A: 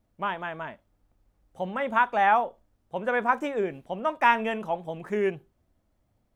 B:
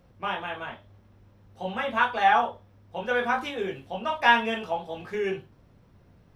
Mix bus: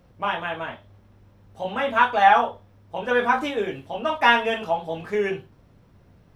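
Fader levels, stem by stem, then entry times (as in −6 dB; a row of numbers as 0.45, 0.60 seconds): −0.5, +2.5 decibels; 0.00, 0.00 seconds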